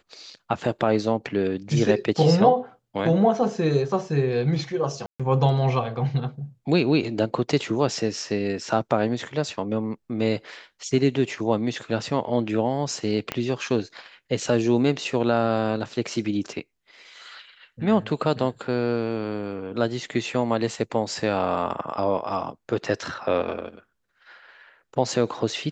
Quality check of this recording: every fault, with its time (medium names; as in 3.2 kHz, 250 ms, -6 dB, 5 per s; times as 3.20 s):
5.06–5.20 s: dropout 136 ms
13.32 s: pop -11 dBFS